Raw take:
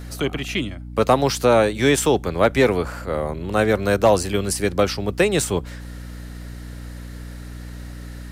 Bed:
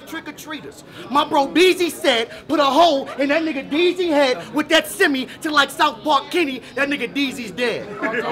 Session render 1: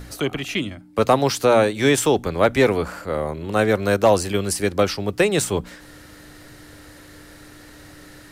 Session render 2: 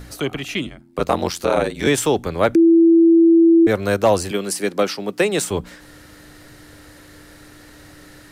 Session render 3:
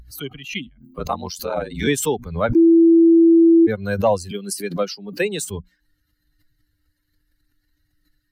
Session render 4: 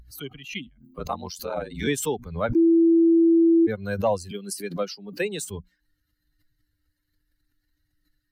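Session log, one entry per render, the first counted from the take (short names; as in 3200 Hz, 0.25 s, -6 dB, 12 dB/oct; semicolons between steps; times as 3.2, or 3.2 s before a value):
de-hum 60 Hz, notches 4
0.66–1.87 ring modulator 43 Hz; 2.55–3.67 bleep 332 Hz -8 dBFS; 4.31–5.51 HPF 170 Hz 24 dB/oct
per-bin expansion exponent 2; backwards sustainer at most 110 dB/s
gain -5.5 dB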